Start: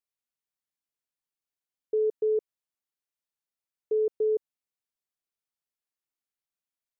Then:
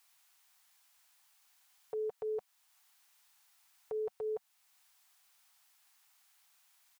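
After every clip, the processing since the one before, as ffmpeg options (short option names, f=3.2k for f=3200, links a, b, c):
-af "firequalizer=gain_entry='entry(200,0);entry(290,-23);entry(750,15)':delay=0.05:min_phase=1,alimiter=level_in=16.5dB:limit=-24dB:level=0:latency=1:release=412,volume=-16.5dB,volume=8.5dB"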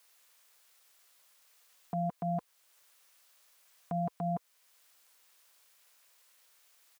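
-af "aeval=exprs='val(0)*sin(2*PI*260*n/s)':c=same,volume=6.5dB"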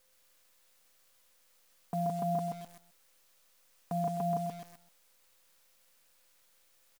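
-filter_complex "[0:a]asplit=2[a][b];[b]aecho=0:1:130|260|390|520:0.631|0.215|0.0729|0.0248[c];[a][c]amix=inputs=2:normalize=0,acrusher=bits=9:dc=4:mix=0:aa=0.000001"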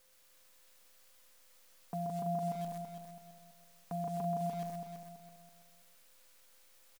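-af "alimiter=level_in=9dB:limit=-24dB:level=0:latency=1:release=154,volume=-9dB,aecho=1:1:331|662|993|1324:0.447|0.156|0.0547|0.0192,volume=2dB"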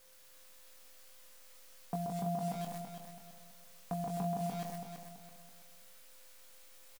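-filter_complex "[0:a]asplit=2[a][b];[b]adelay=21,volume=-5.5dB[c];[a][c]amix=inputs=2:normalize=0,volume=4dB"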